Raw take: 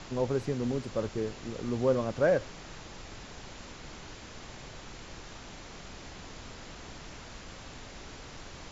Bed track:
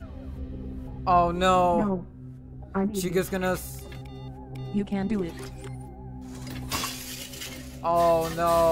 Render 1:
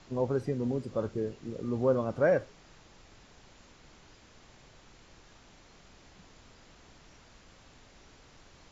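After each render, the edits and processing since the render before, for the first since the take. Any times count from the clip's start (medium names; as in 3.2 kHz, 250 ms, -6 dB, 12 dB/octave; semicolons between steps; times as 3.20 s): noise print and reduce 11 dB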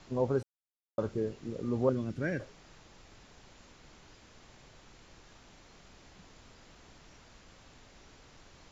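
0.43–0.98 s: mute; 1.89–2.40 s: high-order bell 780 Hz -15.5 dB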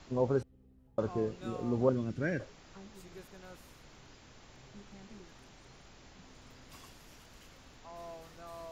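add bed track -26 dB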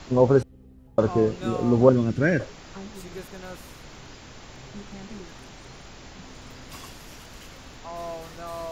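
trim +12 dB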